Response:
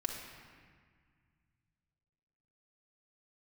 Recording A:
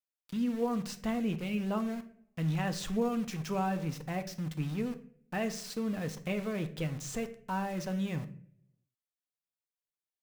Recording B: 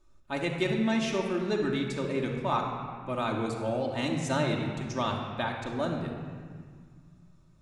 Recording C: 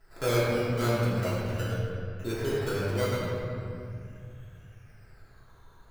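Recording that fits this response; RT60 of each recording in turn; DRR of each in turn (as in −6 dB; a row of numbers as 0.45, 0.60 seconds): B; non-exponential decay, 1.8 s, 2.3 s; 7.5, −0.5, −9.0 decibels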